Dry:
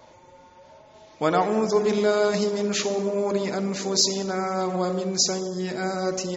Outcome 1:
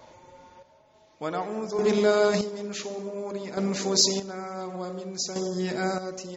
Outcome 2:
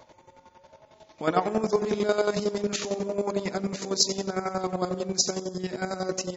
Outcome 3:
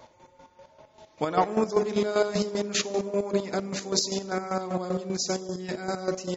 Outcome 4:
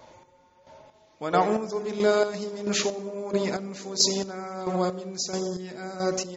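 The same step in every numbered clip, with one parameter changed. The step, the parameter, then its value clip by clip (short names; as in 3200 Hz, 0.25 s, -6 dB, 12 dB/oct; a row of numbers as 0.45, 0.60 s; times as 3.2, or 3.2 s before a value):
chopper, rate: 0.56, 11, 5.1, 1.5 Hz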